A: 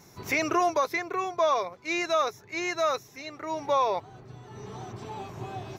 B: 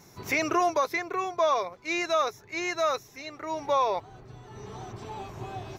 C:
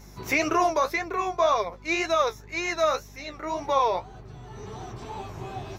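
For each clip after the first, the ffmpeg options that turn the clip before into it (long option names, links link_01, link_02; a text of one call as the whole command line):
ffmpeg -i in.wav -af "asubboost=boost=3.5:cutoff=68" out.wav
ffmpeg -i in.wav -af "flanger=delay=9.2:depth=7.2:regen=42:speed=1.9:shape=sinusoidal,aeval=exprs='val(0)+0.00224*(sin(2*PI*50*n/s)+sin(2*PI*2*50*n/s)/2+sin(2*PI*3*50*n/s)/3+sin(2*PI*4*50*n/s)/4+sin(2*PI*5*50*n/s)/5)':channel_layout=same,volume=6dB" out.wav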